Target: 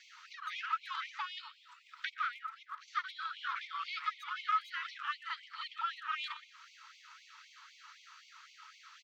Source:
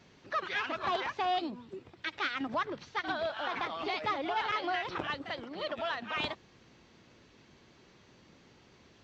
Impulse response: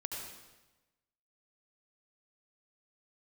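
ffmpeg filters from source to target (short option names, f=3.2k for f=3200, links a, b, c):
-filter_complex "[0:a]equalizer=f=1.3k:t=o:w=0.25:g=14.5,asplit=2[a][b];[b]adelay=120,highpass=300,lowpass=3.4k,asoftclip=type=hard:threshold=-21.5dB,volume=-13dB[c];[a][c]amix=inputs=2:normalize=0,asplit=2[d][e];[1:a]atrim=start_sample=2205,afade=t=out:st=0.38:d=0.01,atrim=end_sample=17199[f];[e][f]afir=irnorm=-1:irlink=0,volume=-19.5dB[g];[d][g]amix=inputs=2:normalize=0,acompressor=threshold=-48dB:ratio=2,asettb=1/sr,asplit=3[h][i][j];[h]atrim=end=2.144[k];[i]atrim=start=2.14:end=2.88,asetpts=PTS-STARTPTS,afade=t=in:d=0.004:c=qsin,afade=t=out:st=0.736:d=0.004:c=qsin,equalizer=f=4.9k:t=o:w=1.9:g=-7.5[l];[j]atrim=start=2.876[m];[k][l]acrossfade=d=0.004:c1=hsin:c2=qsin[n];[n][m]acrossfade=d=0.004:c1=qsin:c2=hsin,afftfilt=real='re*gte(b*sr/1024,830*pow(2100/830,0.5+0.5*sin(2*PI*3.9*pts/sr)))':imag='im*gte(b*sr/1024,830*pow(2100/830,0.5+0.5*sin(2*PI*3.9*pts/sr)))':win_size=1024:overlap=0.75,volume=6dB"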